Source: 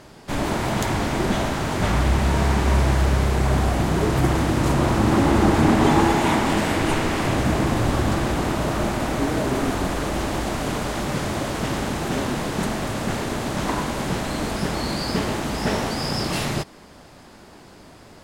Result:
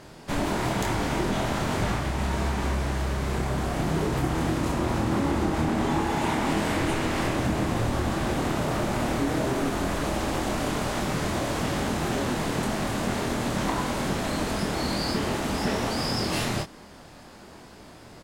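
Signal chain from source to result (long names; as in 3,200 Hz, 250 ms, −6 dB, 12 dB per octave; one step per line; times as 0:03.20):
downward compressor, threshold −21 dBFS, peak gain reduction 9 dB
double-tracking delay 25 ms −5 dB
level −2 dB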